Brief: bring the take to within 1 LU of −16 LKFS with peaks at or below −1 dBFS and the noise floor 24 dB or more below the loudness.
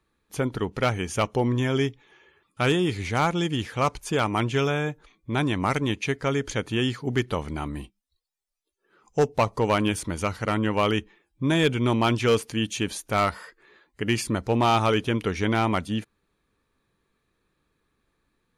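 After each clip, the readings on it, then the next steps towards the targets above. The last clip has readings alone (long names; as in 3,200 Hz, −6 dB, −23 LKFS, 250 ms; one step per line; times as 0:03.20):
share of clipped samples 0.5%; peaks flattened at −14.0 dBFS; integrated loudness −25.5 LKFS; sample peak −14.0 dBFS; target loudness −16.0 LKFS
→ clipped peaks rebuilt −14 dBFS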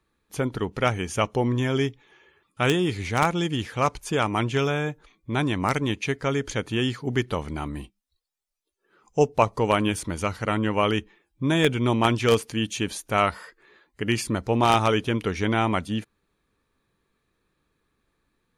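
share of clipped samples 0.0%; integrated loudness −25.0 LKFS; sample peak −5.0 dBFS; target loudness −16.0 LKFS
→ level +9 dB
brickwall limiter −1 dBFS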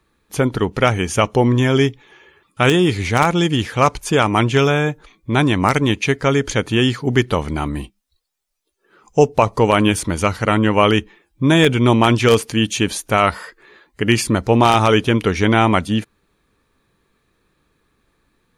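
integrated loudness −16.5 LKFS; sample peak −1.0 dBFS; background noise floor −67 dBFS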